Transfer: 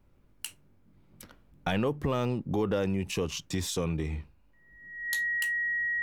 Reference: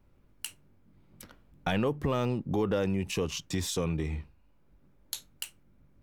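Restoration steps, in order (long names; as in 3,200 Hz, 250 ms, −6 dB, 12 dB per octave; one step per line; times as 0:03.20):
notch filter 1,900 Hz, Q 30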